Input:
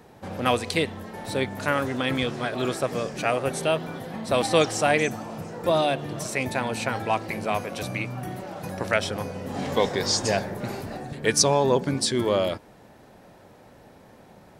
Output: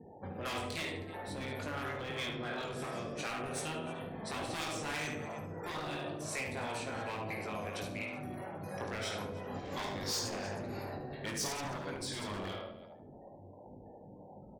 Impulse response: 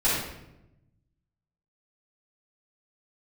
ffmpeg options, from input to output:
-filter_complex "[0:a]afftfilt=real='re*gte(hypot(re,im),0.00631)':imag='im*gte(hypot(re,im),0.00631)':win_size=1024:overlap=0.75,asplit=2[link_01][link_02];[link_02]aecho=0:1:20|52|103.2|185.1|316.2:0.631|0.398|0.251|0.158|0.1[link_03];[link_01][link_03]amix=inputs=2:normalize=0,acrossover=split=430[link_04][link_05];[link_04]aeval=exprs='val(0)*(1-0.7/2+0.7/2*cos(2*PI*2.9*n/s))':channel_layout=same[link_06];[link_05]aeval=exprs='val(0)*(1-0.7/2-0.7/2*cos(2*PI*2.9*n/s))':channel_layout=same[link_07];[link_06][link_07]amix=inputs=2:normalize=0,asplit=2[link_08][link_09];[link_09]adelay=73,lowpass=frequency=3600:poles=1,volume=-6dB,asplit=2[link_10][link_11];[link_11]adelay=73,lowpass=frequency=3600:poles=1,volume=0.36,asplit=2[link_12][link_13];[link_13]adelay=73,lowpass=frequency=3600:poles=1,volume=0.36,asplit=2[link_14][link_15];[link_15]adelay=73,lowpass=frequency=3600:poles=1,volume=0.36[link_16];[link_10][link_12][link_14][link_16]amix=inputs=4:normalize=0[link_17];[link_08][link_17]amix=inputs=2:normalize=0,asoftclip=type=hard:threshold=-23dB,acompressor=threshold=-53dB:ratio=1.5,afftfilt=real='re*lt(hypot(re,im),0.0794)':imag='im*lt(hypot(re,im),0.0794)':win_size=1024:overlap=0.75,volume=1dB"

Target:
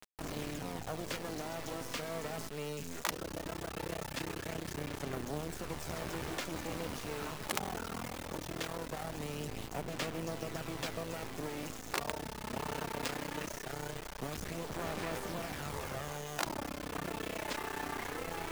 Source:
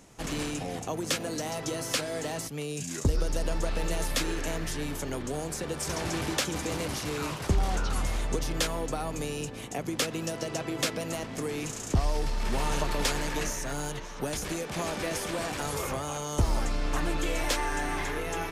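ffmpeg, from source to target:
ffmpeg -i in.wav -af "lowpass=frequency=2300:poles=1,areverse,acompressor=mode=upward:threshold=-30dB:ratio=2.5,areverse,acrusher=bits=4:dc=4:mix=0:aa=0.000001,aphaser=in_gain=1:out_gain=1:delay=4.7:decay=0.24:speed=0.2:type=sinusoidal,afftfilt=real='re*lt(hypot(re,im),0.158)':imag='im*lt(hypot(re,im),0.158)':win_size=1024:overlap=0.75,volume=-3dB" out.wav

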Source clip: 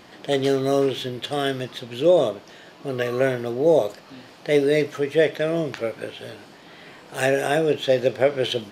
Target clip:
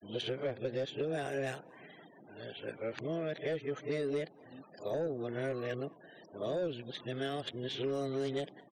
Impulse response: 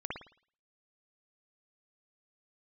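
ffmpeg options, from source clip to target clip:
-filter_complex "[0:a]areverse,afftfilt=real='re*gte(hypot(re,im),0.01)':imag='im*gte(hypot(re,im),0.01)':win_size=1024:overlap=0.75,asoftclip=type=tanh:threshold=-11.5dB,acrossover=split=290|6700[link_01][link_02][link_03];[link_01]acompressor=threshold=-31dB:ratio=4[link_04];[link_02]acompressor=threshold=-27dB:ratio=4[link_05];[link_03]acompressor=threshold=-53dB:ratio=4[link_06];[link_04][link_05][link_06]amix=inputs=3:normalize=0,asplit=2[link_07][link_08];[link_08]adelay=221.6,volume=-29dB,highshelf=frequency=4000:gain=-4.99[link_09];[link_07][link_09]amix=inputs=2:normalize=0,volume=-8.5dB"

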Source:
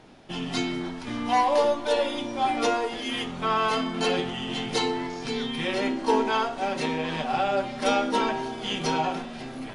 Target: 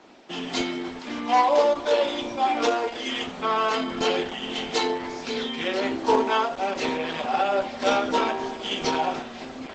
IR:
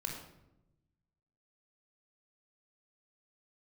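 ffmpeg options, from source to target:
-filter_complex "[0:a]acrossover=split=210|1000|3600[link_01][link_02][link_03][link_04];[link_01]acrusher=bits=4:mix=0:aa=0.000001[link_05];[link_05][link_02][link_03][link_04]amix=inputs=4:normalize=0,bandreject=frequency=408.8:width_type=h:width=4,bandreject=frequency=817.6:width_type=h:width=4,bandreject=frequency=1226.4:width_type=h:width=4,bandreject=frequency=1635.2:width_type=h:width=4,bandreject=frequency=2044:width_type=h:width=4,volume=3dB" -ar 48000 -c:a libopus -b:a 12k

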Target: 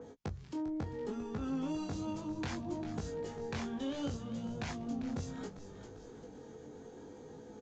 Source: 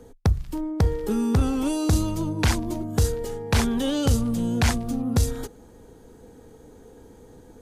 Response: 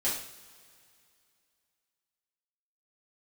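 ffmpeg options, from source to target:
-filter_complex "[0:a]highpass=120,acompressor=threshold=-29dB:ratio=5,asplit=2[link_01][link_02];[link_02]adelay=14,volume=-12dB[link_03];[link_01][link_03]amix=inputs=2:normalize=0,aresample=16000,asoftclip=type=tanh:threshold=-22.5dB,aresample=44100,asplit=4[link_04][link_05][link_06][link_07];[link_05]adelay=397,afreqshift=-68,volume=-12dB[link_08];[link_06]adelay=794,afreqshift=-136,volume=-21.4dB[link_09];[link_07]adelay=1191,afreqshift=-204,volume=-30.7dB[link_10];[link_04][link_08][link_09][link_10]amix=inputs=4:normalize=0,flanger=delay=18.5:depth=4.4:speed=0.67,acompressor=mode=upward:threshold=-41dB:ratio=2.5,adynamicequalizer=threshold=0.00126:dfrequency=2900:dqfactor=0.7:tfrequency=2900:tqfactor=0.7:attack=5:release=100:ratio=0.375:range=2:mode=cutabove:tftype=highshelf,volume=-3dB"

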